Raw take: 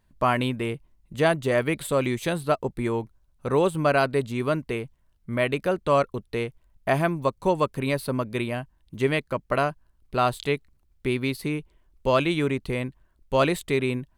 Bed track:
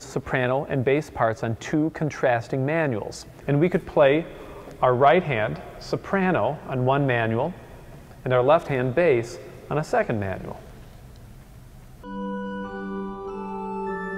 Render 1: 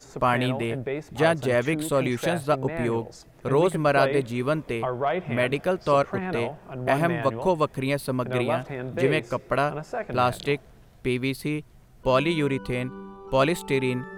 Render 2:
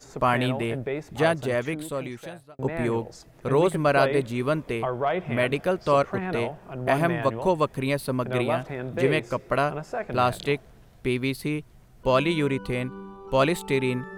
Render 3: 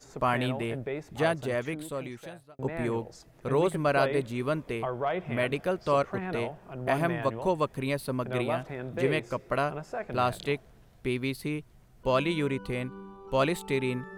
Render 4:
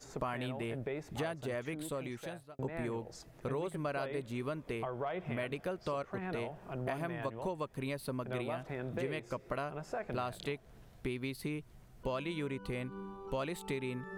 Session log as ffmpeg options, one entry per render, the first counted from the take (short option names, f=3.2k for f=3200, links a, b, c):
-filter_complex "[1:a]volume=-9dB[a];[0:a][a]amix=inputs=2:normalize=0"
-filter_complex "[0:a]asplit=2[a][b];[a]atrim=end=2.59,asetpts=PTS-STARTPTS,afade=t=out:st=1.1:d=1.49[c];[b]atrim=start=2.59,asetpts=PTS-STARTPTS,afade=t=in:d=0.004:c=hsin[d];[c][d]concat=n=2:v=0:a=1"
-af "volume=-4.5dB"
-af "acompressor=threshold=-35dB:ratio=5"